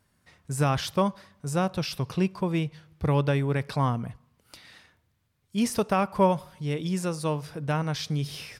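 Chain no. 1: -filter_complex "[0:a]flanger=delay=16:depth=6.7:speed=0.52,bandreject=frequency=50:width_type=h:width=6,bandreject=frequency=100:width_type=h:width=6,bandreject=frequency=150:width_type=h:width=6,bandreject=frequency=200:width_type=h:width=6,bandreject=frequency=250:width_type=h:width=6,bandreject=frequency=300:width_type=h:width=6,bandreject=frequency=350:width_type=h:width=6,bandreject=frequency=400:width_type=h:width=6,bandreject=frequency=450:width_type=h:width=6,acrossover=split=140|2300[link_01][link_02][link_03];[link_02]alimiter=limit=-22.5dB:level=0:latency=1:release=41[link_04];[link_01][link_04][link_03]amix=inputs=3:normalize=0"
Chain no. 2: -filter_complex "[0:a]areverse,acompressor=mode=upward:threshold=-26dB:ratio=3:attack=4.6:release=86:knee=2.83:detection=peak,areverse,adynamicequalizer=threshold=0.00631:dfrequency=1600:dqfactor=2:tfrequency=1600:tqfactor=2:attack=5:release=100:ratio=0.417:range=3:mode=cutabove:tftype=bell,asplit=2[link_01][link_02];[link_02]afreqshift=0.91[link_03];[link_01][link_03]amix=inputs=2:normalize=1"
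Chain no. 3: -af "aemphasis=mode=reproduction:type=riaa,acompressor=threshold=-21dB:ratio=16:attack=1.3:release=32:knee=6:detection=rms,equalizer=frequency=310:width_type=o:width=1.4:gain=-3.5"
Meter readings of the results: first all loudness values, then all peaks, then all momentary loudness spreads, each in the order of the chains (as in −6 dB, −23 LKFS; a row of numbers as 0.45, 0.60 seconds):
−33.0, −31.0, −29.5 LKFS; −17.5, −14.5, −19.5 dBFS; 10, 14, 5 LU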